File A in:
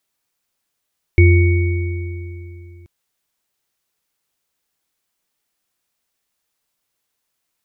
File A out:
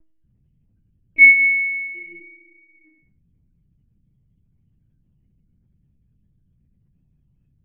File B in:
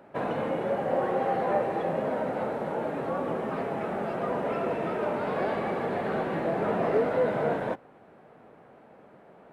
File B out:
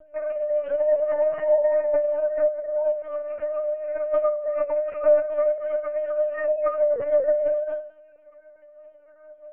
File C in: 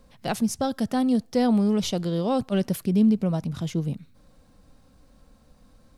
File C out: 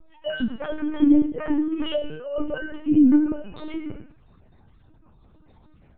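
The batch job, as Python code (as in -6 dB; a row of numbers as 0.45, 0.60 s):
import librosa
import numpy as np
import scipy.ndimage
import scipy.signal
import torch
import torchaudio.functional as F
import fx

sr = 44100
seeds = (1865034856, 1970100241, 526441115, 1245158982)

p1 = fx.sine_speech(x, sr)
p2 = 10.0 ** (-14.0 / 20.0) * np.tanh(p1 / 10.0 ** (-14.0 / 20.0))
p3 = p1 + (p2 * librosa.db_to_amplitude(-11.0))
p4 = fx.add_hum(p3, sr, base_hz=50, snr_db=22)
p5 = fx.stiff_resonator(p4, sr, f0_hz=300.0, decay_s=0.45, stiffness=0.002)
p6 = p5 + fx.echo_feedback(p5, sr, ms=89, feedback_pct=31, wet_db=-9.0, dry=0)
p7 = fx.lpc_vocoder(p6, sr, seeds[0], excitation='pitch_kept', order=10)
y = p7 * 10.0 ** (-24 / 20.0) / np.sqrt(np.mean(np.square(p7)))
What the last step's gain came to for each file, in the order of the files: +10.5, +18.0, +21.0 dB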